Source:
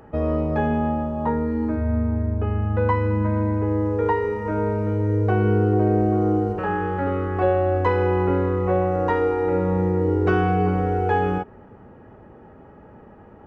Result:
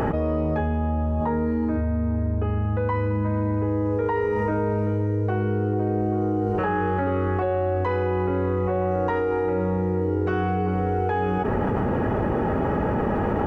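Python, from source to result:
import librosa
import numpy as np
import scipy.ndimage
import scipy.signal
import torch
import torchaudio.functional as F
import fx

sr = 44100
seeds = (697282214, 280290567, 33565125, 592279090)

y = fx.peak_eq(x, sr, hz=78.0, db=11.0, octaves=0.77, at=(0.6, 1.21))
y = fx.env_flatten(y, sr, amount_pct=100)
y = F.gain(torch.from_numpy(y), -6.5).numpy()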